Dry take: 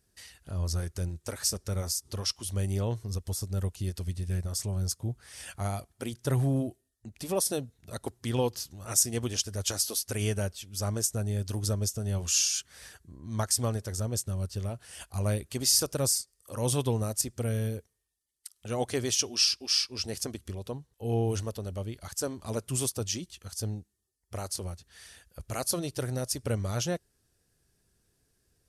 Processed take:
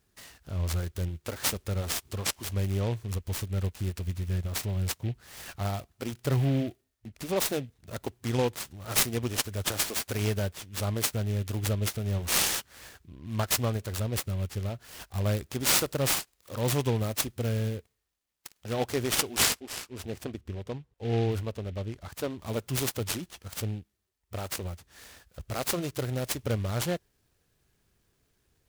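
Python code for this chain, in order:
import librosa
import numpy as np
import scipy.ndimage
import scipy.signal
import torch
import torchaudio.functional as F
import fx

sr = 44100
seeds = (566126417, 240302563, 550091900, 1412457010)

y = fx.lowpass(x, sr, hz=fx.line((19.59, 1100.0), (22.37, 2800.0)), slope=6, at=(19.59, 22.37), fade=0.02)
y = fx.noise_mod_delay(y, sr, seeds[0], noise_hz=2400.0, depth_ms=0.051)
y = y * 10.0 ** (1.0 / 20.0)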